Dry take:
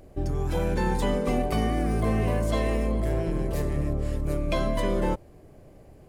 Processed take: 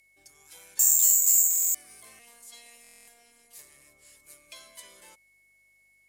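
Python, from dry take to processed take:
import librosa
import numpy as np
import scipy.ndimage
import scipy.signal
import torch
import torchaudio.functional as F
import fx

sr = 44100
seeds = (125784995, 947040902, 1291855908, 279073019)

y = fx.resample_bad(x, sr, factor=6, down='none', up='zero_stuff', at=(0.79, 1.6))
y = fx.tilt_eq(y, sr, slope=2.5)
y = y + 10.0 ** (-44.0 / 20.0) * np.sin(2.0 * np.pi * 2200.0 * np.arange(len(y)) / sr)
y = fx.robotise(y, sr, hz=236.0, at=(2.19, 3.59))
y = fx.add_hum(y, sr, base_hz=50, snr_db=30)
y = scipy.signal.sosfilt(scipy.signal.butter(2, 11000.0, 'lowpass', fs=sr, output='sos'), y)
y = F.preemphasis(torch.from_numpy(y), 0.97).numpy()
y = fx.buffer_glitch(y, sr, at_s=(1.49, 2.82), block=1024, repeats=10)
y = y * librosa.db_to_amplitude(-7.5)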